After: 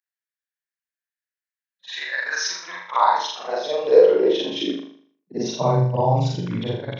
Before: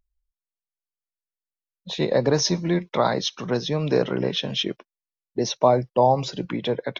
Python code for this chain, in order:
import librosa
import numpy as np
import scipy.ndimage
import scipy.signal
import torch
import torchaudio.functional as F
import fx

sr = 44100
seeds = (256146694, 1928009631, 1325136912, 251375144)

y = fx.frame_reverse(x, sr, frame_ms=123.0)
y = fx.filter_sweep_highpass(y, sr, from_hz=1700.0, to_hz=110.0, start_s=2.22, end_s=6.01, q=6.5)
y = fx.room_flutter(y, sr, wall_m=6.8, rt60_s=0.54)
y = F.gain(torch.from_numpy(y), -1.0).numpy()